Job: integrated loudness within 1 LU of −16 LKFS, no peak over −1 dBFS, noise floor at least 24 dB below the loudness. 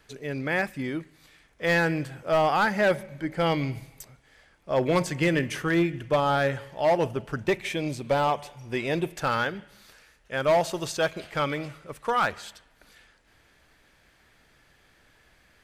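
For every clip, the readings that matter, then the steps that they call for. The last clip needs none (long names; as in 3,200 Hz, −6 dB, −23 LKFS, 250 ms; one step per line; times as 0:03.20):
share of clipped samples 1.0%; peaks flattened at −16.5 dBFS; integrated loudness −26.5 LKFS; sample peak −16.5 dBFS; target loudness −16.0 LKFS
→ clipped peaks rebuilt −16.5 dBFS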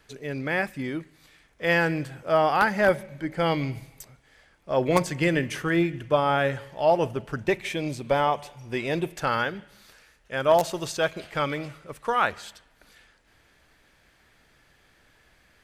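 share of clipped samples 0.0%; integrated loudness −25.5 LKFS; sample peak −7.5 dBFS; target loudness −16.0 LKFS
→ level +9.5 dB
brickwall limiter −1 dBFS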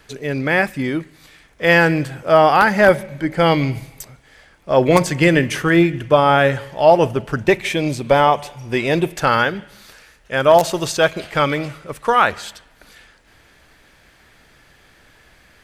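integrated loudness −16.5 LKFS; sample peak −1.0 dBFS; background noise floor −52 dBFS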